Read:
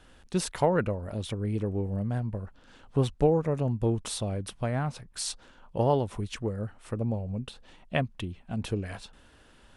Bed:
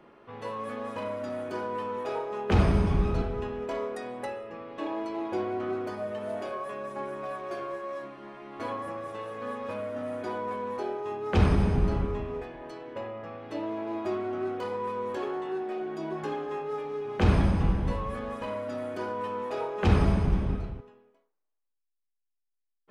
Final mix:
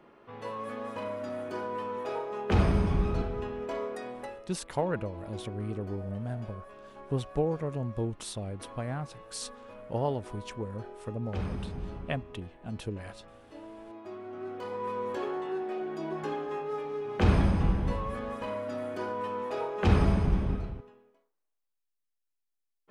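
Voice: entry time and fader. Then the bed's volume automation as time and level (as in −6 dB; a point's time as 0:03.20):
4.15 s, −5.5 dB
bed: 0:04.10 −2 dB
0:04.60 −13 dB
0:14.04 −13 dB
0:14.92 −1 dB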